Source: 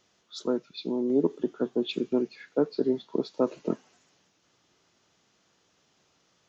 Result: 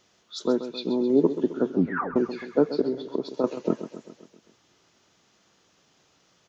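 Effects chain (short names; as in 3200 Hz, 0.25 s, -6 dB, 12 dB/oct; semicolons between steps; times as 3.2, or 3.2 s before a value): 1.7 tape stop 0.46 s; 2.81–3.44 compressor 4:1, threshold -28 dBFS, peak gain reduction 8.5 dB; feedback echo 0.132 s, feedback 57%, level -12 dB; gain +4 dB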